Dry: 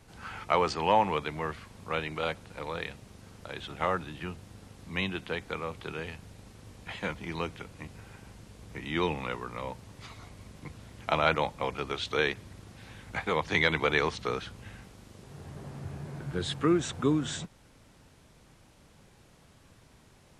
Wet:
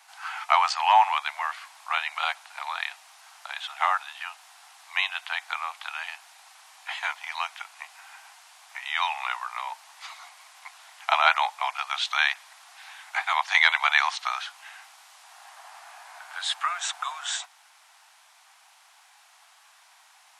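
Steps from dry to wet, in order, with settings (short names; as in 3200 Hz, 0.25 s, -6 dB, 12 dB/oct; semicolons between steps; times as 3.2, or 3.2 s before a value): steep high-pass 710 Hz 72 dB/oct; gain +7.5 dB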